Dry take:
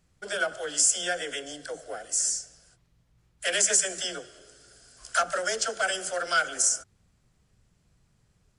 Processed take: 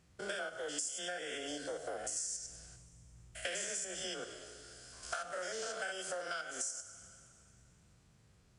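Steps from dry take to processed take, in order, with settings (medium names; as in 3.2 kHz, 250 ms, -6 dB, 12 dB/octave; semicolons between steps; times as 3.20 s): spectrogram pixelated in time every 100 ms; 1.95–4.08 s: bass shelf 160 Hz +8 dB; high-pass 52 Hz; treble shelf 6.9 kHz -4 dB; two-slope reverb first 0.56 s, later 2.3 s, from -18 dB, DRR 11 dB; compression 12:1, threshold -40 dBFS, peak gain reduction 18.5 dB; trim +3 dB; Vorbis 48 kbps 32 kHz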